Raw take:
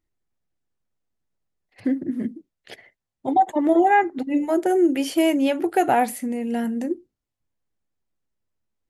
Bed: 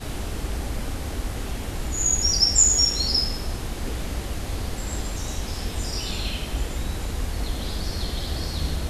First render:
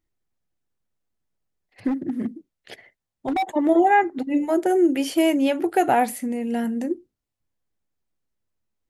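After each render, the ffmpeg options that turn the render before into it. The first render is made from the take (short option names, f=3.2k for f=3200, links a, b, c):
-filter_complex "[0:a]asplit=3[a][b][c];[a]afade=t=out:st=1.87:d=0.02[d];[b]asoftclip=type=hard:threshold=-20dB,afade=t=in:st=1.87:d=0.02,afade=t=out:st=3.42:d=0.02[e];[c]afade=t=in:st=3.42:d=0.02[f];[d][e][f]amix=inputs=3:normalize=0"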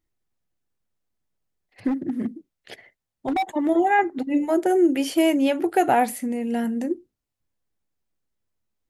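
-filter_complex "[0:a]asettb=1/sr,asplit=3[a][b][c];[a]atrim=end=3.424[d];[b]atrim=start=3.42:end=3.99,asetpts=PTS-STARTPTS,afade=t=in:d=0.004:c=qsin,afade=t=out:st=0.566:d=0.004:c=qsin,equalizer=f=550:t=o:w=1.5:g=-4.5[e];[c]atrim=start=3.986[f];[d][e]acrossfade=d=0.004:c1=hsin:c2=qsin[g];[g][f]acrossfade=d=0.004:c1=qsin:c2=hsin"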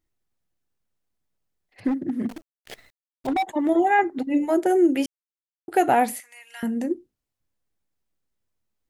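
-filter_complex "[0:a]asettb=1/sr,asplit=3[a][b][c];[a]atrim=end=2.294[d];[b]atrim=start=2.29:end=3.27,asetpts=PTS-STARTPTS,afade=t=in:d=0.004:c=qsin,afade=t=out:st=0.976:d=0.004:c=qsin,acrusher=bits=7:dc=4:mix=0:aa=0.000001[e];[c]atrim=start=3.266[f];[d][e]acrossfade=d=0.004:c1=hsin:c2=qsin[g];[g][f]acrossfade=d=0.004:c1=qsin:c2=hsin,asettb=1/sr,asplit=3[h][i][j];[h]atrim=end=6.204[k];[i]atrim=start=6.2:end=6.63,asetpts=PTS-STARTPTS,afade=t=in:d=0.004:c=qsin,afade=t=out:st=0.426:d=0.004:c=qsin,highpass=f=1.2k:w=0.5412,highpass=f=1.2k:w=1.3066[l];[j]atrim=start=6.626[m];[k][l]acrossfade=d=0.004:c1=hsin:c2=qsin[n];[n][m]acrossfade=d=0.004:c1=qsin:c2=hsin,asplit=3[o][p][q];[o]atrim=end=5.06,asetpts=PTS-STARTPTS,afade=t=out:st=5.056:d=0.004:c=hsin[r];[p]atrim=start=5.06:end=5.68,asetpts=PTS-STARTPTS,volume=0[s];[q]atrim=start=5.68,asetpts=PTS-STARTPTS,afade=t=in:d=0.004:c=hsin[t];[r][s][t]concat=n=3:v=0:a=1"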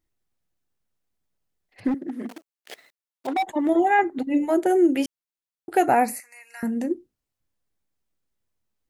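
-filter_complex "[0:a]asettb=1/sr,asplit=3[a][b][c];[a]atrim=end=1.944[d];[b]atrim=start=1.94:end=3.39,asetpts=PTS-STARTPTS,afade=t=in:d=0.004:c=qsin,afade=t=out:st=1.446:d=0.004:c=qsin,highpass=320[e];[c]atrim=start=3.386[f];[d][e]acrossfade=d=0.004:c1=hsin:c2=qsin[g];[g][f]acrossfade=d=0.004:c1=qsin:c2=hsin,asettb=1/sr,asplit=3[h][i][j];[h]atrim=end=4.044[k];[i]atrim=start=4.04:end=4.93,asetpts=PTS-STARTPTS,afade=t=in:d=0.004:c=qsin,afade=t=out:st=0.886:d=0.004:c=qsin,bandreject=f=5.3k:w=7.5[l];[j]atrim=start=4.926[m];[k][l]acrossfade=d=0.004:c1=hsin:c2=qsin[n];[n][m]acrossfade=d=0.004:c1=qsin:c2=hsin,asplit=3[o][p][q];[o]afade=t=out:st=5.85:d=0.02[r];[p]asuperstop=centerf=3300:order=8:qfactor=2.5,afade=t=in:st=5.85:d=0.02,afade=t=out:st=6.71:d=0.02[s];[q]afade=t=in:st=6.71:d=0.02[t];[r][s][t]amix=inputs=3:normalize=0"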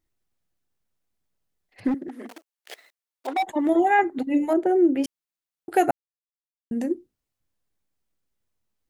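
-filter_complex "[0:a]asettb=1/sr,asplit=3[a][b][c];[a]atrim=end=2.084[d];[b]atrim=start=2.08:end=3.4,asetpts=PTS-STARTPTS,afade=t=in:d=0.004:c=qsin,afade=t=out:st=1.316:d=0.004:c=qsin,highpass=370[e];[c]atrim=start=3.396[f];[d][e]acrossfade=d=0.004:c1=hsin:c2=qsin[g];[g][f]acrossfade=d=0.004:c1=qsin:c2=hsin,asettb=1/sr,asplit=3[h][i][j];[h]atrim=end=4.534[k];[i]atrim=start=4.53:end=5.04,asetpts=PTS-STARTPTS,afade=t=in:d=0.004:c=qsin,afade=t=out:st=0.506:d=0.004:c=qsin,lowpass=f=1k:p=1[l];[j]atrim=start=5.036[m];[k][l]acrossfade=d=0.004:c1=hsin:c2=qsin[n];[n][m]acrossfade=d=0.004:c1=qsin:c2=hsin,asplit=3[o][p][q];[o]atrim=end=5.91,asetpts=PTS-STARTPTS,afade=t=out:st=5.906:d=0.004:c=hsin[r];[p]atrim=start=5.91:end=6.71,asetpts=PTS-STARTPTS,volume=0[s];[q]atrim=start=6.71,asetpts=PTS-STARTPTS,afade=t=in:d=0.004:c=hsin[t];[r][s][t]concat=n=3:v=0:a=1"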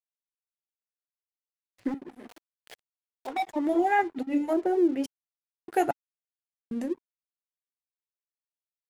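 -af "flanger=delay=1.4:depth=5.4:regen=-79:speed=1:shape=sinusoidal,aeval=exprs='sgn(val(0))*max(abs(val(0))-0.00355,0)':c=same"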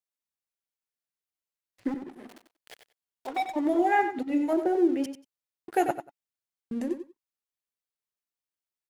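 -af "aecho=1:1:93|186:0.335|0.0536"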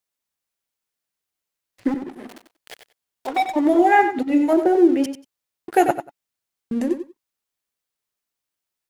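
-af "volume=8.5dB"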